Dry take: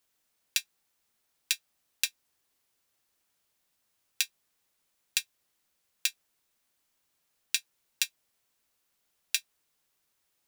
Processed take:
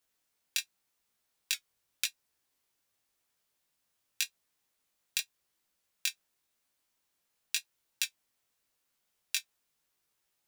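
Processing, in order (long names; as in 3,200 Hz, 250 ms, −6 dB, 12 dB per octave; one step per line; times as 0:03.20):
chorus effect 0.89 Hz, delay 15 ms, depth 7.3 ms
0:01.54–0:02.05: frequency shifter −150 Hz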